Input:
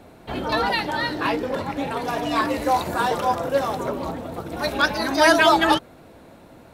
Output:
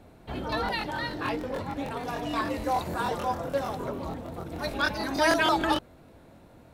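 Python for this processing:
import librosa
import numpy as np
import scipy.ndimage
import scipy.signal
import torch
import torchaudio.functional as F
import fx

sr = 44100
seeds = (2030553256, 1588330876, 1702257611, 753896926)

y = fx.low_shelf(x, sr, hz=140.0, db=8.5)
y = fx.buffer_crackle(y, sr, first_s=0.64, period_s=0.15, block=1024, kind='repeat')
y = y * 10.0 ** (-8.0 / 20.0)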